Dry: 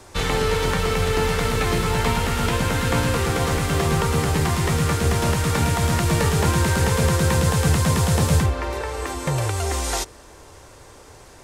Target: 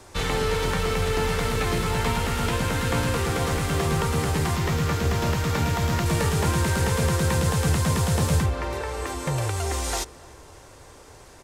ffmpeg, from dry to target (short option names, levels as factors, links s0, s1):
-filter_complex "[0:a]asplit=2[s0][s1];[s1]asoftclip=type=hard:threshold=0.0631,volume=0.299[s2];[s0][s2]amix=inputs=2:normalize=0,asettb=1/sr,asplit=3[s3][s4][s5];[s3]atrim=end=4.564[s6];[s4]atrim=start=4.56:end=6.06,asetpts=PTS-STARTPTS,afade=t=in:d=0.004:c=qsin,afade=t=out:st=1.496:d=0.004:c=qsin,equalizer=f=9300:t=o:w=0.43:g=-10[s7];[s5]atrim=start=6.056[s8];[s6][s7]acrossfade=d=0.004:c1=hsin:c2=qsin[s9];[s9][s8]acrossfade=d=0.004:c1=qsin:c2=hsin,asplit=2[s10][s11];[s11]adelay=295,lowpass=f=2000:p=1,volume=0.0794,asplit=2[s12][s13];[s13]adelay=295,lowpass=f=2000:p=1,volume=0.54,asplit=2[s14][s15];[s15]adelay=295,lowpass=f=2000:p=1,volume=0.54,asplit=2[s16][s17];[s17]adelay=295,lowpass=f=2000:p=1,volume=0.54[s18];[s10][s12][s14][s16][s18]amix=inputs=5:normalize=0,volume=0.596"